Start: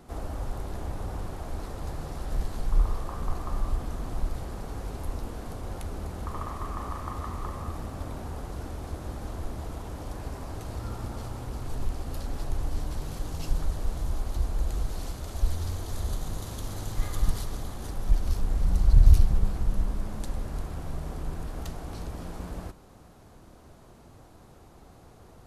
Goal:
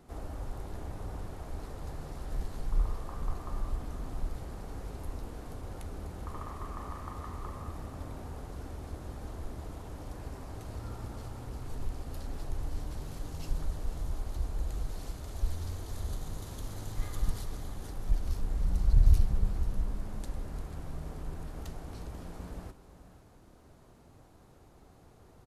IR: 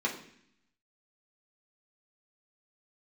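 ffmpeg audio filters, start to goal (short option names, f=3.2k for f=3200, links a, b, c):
-filter_complex "[0:a]aecho=1:1:490:0.188,asplit=2[a][b];[1:a]atrim=start_sample=2205[c];[b][c]afir=irnorm=-1:irlink=0,volume=-23.5dB[d];[a][d]amix=inputs=2:normalize=0,volume=-6dB"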